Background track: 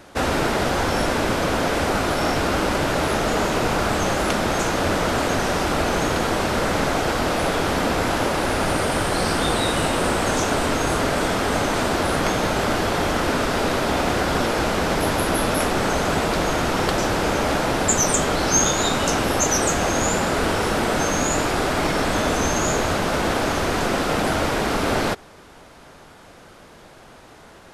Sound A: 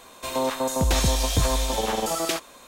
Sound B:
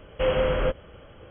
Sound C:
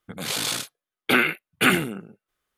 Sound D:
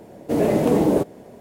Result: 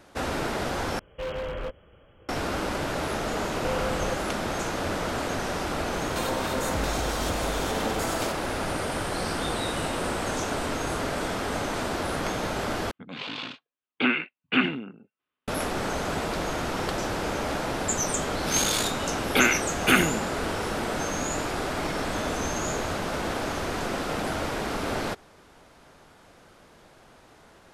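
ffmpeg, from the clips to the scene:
ffmpeg -i bed.wav -i cue0.wav -i cue1.wav -i cue2.wav -filter_complex "[2:a]asplit=2[link_01][link_02];[3:a]asplit=2[link_03][link_04];[0:a]volume=-8dB[link_05];[link_01]aeval=exprs='0.119*(abs(mod(val(0)/0.119+3,4)-2)-1)':channel_layout=same[link_06];[link_02]acompressor=threshold=-25dB:ratio=6:attack=3.2:release=140:knee=1:detection=peak[link_07];[1:a]acompressor=threshold=-28dB:ratio=6:attack=3.2:release=140:knee=1:detection=peak[link_08];[link_03]highpass=100,equalizer=frequency=260:width_type=q:width=4:gain=10,equalizer=frequency=1000:width_type=q:width=4:gain=6,equalizer=frequency=2700:width_type=q:width=4:gain=7,lowpass=frequency=3900:width=0.5412,lowpass=frequency=3900:width=1.3066[link_09];[link_05]asplit=3[link_10][link_11][link_12];[link_10]atrim=end=0.994[link_13];[link_06]atrim=end=1.3,asetpts=PTS-STARTPTS,volume=-8dB[link_14];[link_11]atrim=start=2.286:end=12.914[link_15];[link_09]atrim=end=2.57,asetpts=PTS-STARTPTS,volume=-8dB[link_16];[link_12]atrim=start=15.476[link_17];[link_07]atrim=end=1.3,asetpts=PTS-STARTPTS,volume=-2dB,afade=type=in:duration=0.004:curve=hsin,afade=type=out:start_time=1.296:duration=0.004:curve=hsin,adelay=152145S[link_18];[link_08]atrim=end=2.67,asetpts=PTS-STARTPTS,volume=-0.5dB,afade=type=in:duration=0.004:curve=hsin,afade=type=out:start_time=2.666:duration=0.004:curve=hsin,adelay=261513S[link_19];[link_04]atrim=end=2.57,asetpts=PTS-STARTPTS,volume=-1.5dB,afade=type=in:duration=0.004:curve=hsin,afade=type=out:start_time=2.566:duration=0.004:curve=hsin,adelay=18260[link_20];[link_13][link_14]acrossfade=duration=0.004:curve1=hsin:curve2=hsin[link_21];[link_21][link_15]acrossfade=duration=0.004:curve1=hsin:curve2=hsin[link_22];[link_22][link_16]acrossfade=duration=0.004:curve1=hsin:curve2=hsin[link_23];[link_23][link_17]acrossfade=duration=0.004:curve1=hsin:curve2=hsin[link_24];[link_24][link_18][link_19][link_20]amix=inputs=4:normalize=0" out.wav

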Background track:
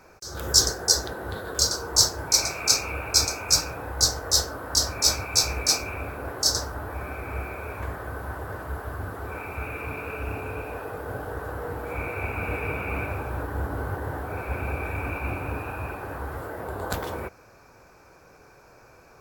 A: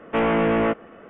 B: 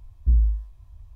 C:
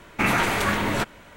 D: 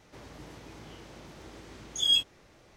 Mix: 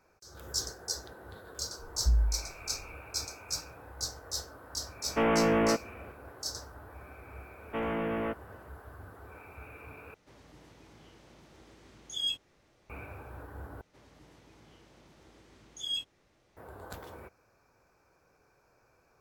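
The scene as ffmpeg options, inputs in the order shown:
ffmpeg -i bed.wav -i cue0.wav -i cue1.wav -i cue2.wav -i cue3.wav -filter_complex "[1:a]asplit=2[link_01][link_02];[4:a]asplit=2[link_03][link_04];[0:a]volume=-15dB,asplit=3[link_05][link_06][link_07];[link_05]atrim=end=10.144[link_08];[link_03]atrim=end=2.76,asetpts=PTS-STARTPTS,volume=-8.5dB[link_09];[link_06]atrim=start=12.896:end=13.814[link_10];[link_04]atrim=end=2.76,asetpts=PTS-STARTPTS,volume=-10.5dB[link_11];[link_07]atrim=start=16.566[link_12];[2:a]atrim=end=1.15,asetpts=PTS-STARTPTS,volume=-7dB,afade=type=in:duration=0.004:curve=hsin,afade=type=out:start_time=1.146:duration=0.004:curve=hsin,adelay=1790[link_13];[link_01]atrim=end=1.09,asetpts=PTS-STARTPTS,volume=-5.5dB,afade=type=in:duration=0.004:curve=hsin,afade=type=out:start_time=1.086:duration=0.004:curve=hsin,adelay=5030[link_14];[link_02]atrim=end=1.09,asetpts=PTS-STARTPTS,volume=-12.5dB,afade=type=in:duration=0.004:curve=hsin,afade=type=out:start_time=1.086:duration=0.004:curve=hsin,adelay=7600[link_15];[link_08][link_09]acrossfade=duration=0.004:curve1=hsin:curve2=hsin[link_16];[link_16][link_10]acrossfade=duration=0.004:curve1=hsin:curve2=hsin[link_17];[link_17][link_11]acrossfade=duration=0.004:curve1=hsin:curve2=hsin[link_18];[link_18][link_12]acrossfade=duration=0.004:curve1=hsin:curve2=hsin[link_19];[link_19][link_13][link_14][link_15]amix=inputs=4:normalize=0" out.wav

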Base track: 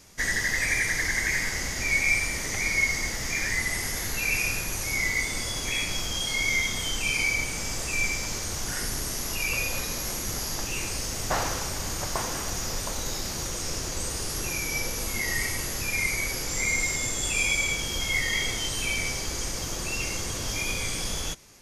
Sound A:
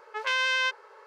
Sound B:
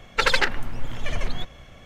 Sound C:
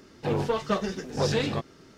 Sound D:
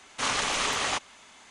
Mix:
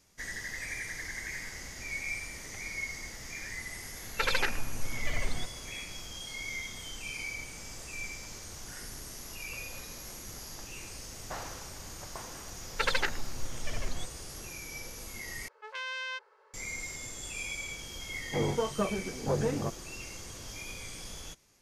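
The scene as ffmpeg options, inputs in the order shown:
ffmpeg -i bed.wav -i cue0.wav -i cue1.wav -i cue2.wav -filter_complex "[2:a]asplit=2[link_01][link_02];[0:a]volume=-13dB[link_03];[link_01]alimiter=limit=-8.5dB:level=0:latency=1:release=46[link_04];[3:a]lowpass=1300[link_05];[link_03]asplit=2[link_06][link_07];[link_06]atrim=end=15.484[link_08];[1:a]atrim=end=1.06,asetpts=PTS-STARTPTS,volume=-11.5dB[link_09];[link_07]atrim=start=16.536[link_10];[link_04]atrim=end=1.85,asetpts=PTS-STARTPTS,volume=-6.5dB,afade=type=in:duration=0.004:curve=hsin,afade=type=out:start_time=1.846:duration=0.004:curve=hsin,adelay=176841S[link_11];[link_02]atrim=end=1.85,asetpts=PTS-STARTPTS,volume=-9dB,afade=type=in:duration=0.004:curve=hsin,afade=type=out:start_time=1.846:duration=0.004:curve=hsin,adelay=12610[link_12];[link_05]atrim=end=1.97,asetpts=PTS-STARTPTS,volume=-3.5dB,afade=type=in:duration=0.004:curve=hsin,afade=type=out:start_time=1.966:duration=0.004:curve=hsin,adelay=18090[link_13];[link_08][link_09]acrossfade=duration=0.004:curve1=hsin:curve2=hsin[link_14];[link_14][link_10]acrossfade=duration=0.004:curve1=hsin:curve2=hsin[link_15];[link_15][link_11][link_12][link_13]amix=inputs=4:normalize=0" out.wav

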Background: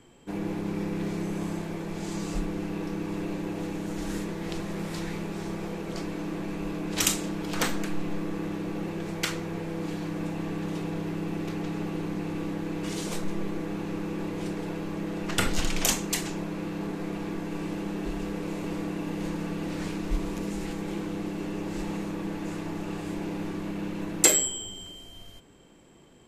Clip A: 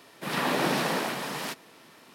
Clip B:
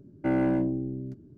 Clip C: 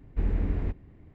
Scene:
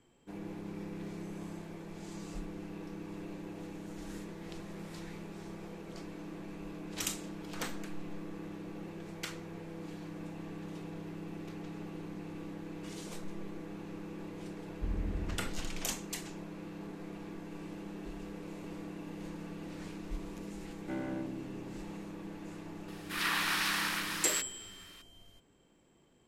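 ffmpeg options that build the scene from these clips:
ffmpeg -i bed.wav -i cue0.wav -i cue1.wav -i cue2.wav -filter_complex "[0:a]volume=-11.5dB[link_01];[2:a]tiltshelf=frequency=970:gain=-4[link_02];[1:a]highpass=frequency=1200:width=0.5412,highpass=frequency=1200:width=1.3066[link_03];[3:a]atrim=end=1.14,asetpts=PTS-STARTPTS,volume=-9dB,afade=type=in:duration=0.004:curve=hsin,afade=type=out:start_time=1.136:duration=0.004:curve=hsin,adelay=14650[link_04];[link_02]atrim=end=1.37,asetpts=PTS-STARTPTS,volume=-11.5dB,afade=type=in:duration=0.004:curve=hsin,afade=type=out:start_time=1.366:duration=0.004:curve=hsin,adelay=20640[link_05];[link_03]atrim=end=2.14,asetpts=PTS-STARTPTS,volume=-0.5dB,afade=type=in:duration=0.004:curve=hsin,afade=type=out:start_time=2.136:duration=0.004:curve=hsin,adelay=22880[link_06];[link_01][link_04][link_05][link_06]amix=inputs=4:normalize=0" out.wav

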